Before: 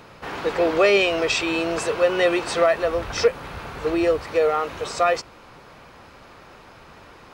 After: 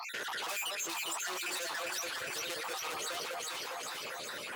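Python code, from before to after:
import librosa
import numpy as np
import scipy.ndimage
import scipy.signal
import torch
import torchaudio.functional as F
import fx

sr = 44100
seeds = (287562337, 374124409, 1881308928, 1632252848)

y = fx.spec_dropout(x, sr, seeds[0], share_pct=76)
y = scipy.signal.sosfilt(scipy.signal.butter(2, 100.0, 'highpass', fs=sr, output='sos'), y)
y = fx.notch(y, sr, hz=5400.0, q=9.4)
y = fx.tube_stage(y, sr, drive_db=37.0, bias=0.4)
y = fx.low_shelf(y, sr, hz=150.0, db=-8.5)
y = fx.stretch_grains(y, sr, factor=0.62, grain_ms=148.0)
y = fx.tilt_eq(y, sr, slope=3.5)
y = fx.echo_alternate(y, sr, ms=202, hz=1600.0, feedback_pct=70, wet_db=-2.0)
y = fx.env_flatten(y, sr, amount_pct=70)
y = y * librosa.db_to_amplitude(-4.0)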